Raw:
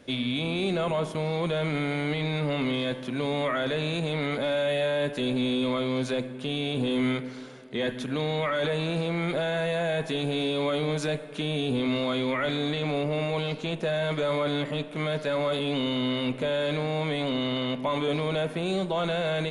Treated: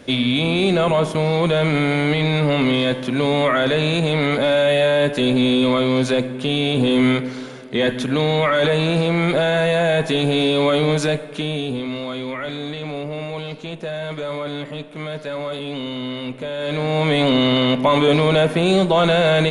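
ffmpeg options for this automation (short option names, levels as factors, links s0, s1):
-af "volume=12.6,afade=t=out:st=10.92:d=0.94:silence=0.316228,afade=t=in:st=16.56:d=0.63:silence=0.251189"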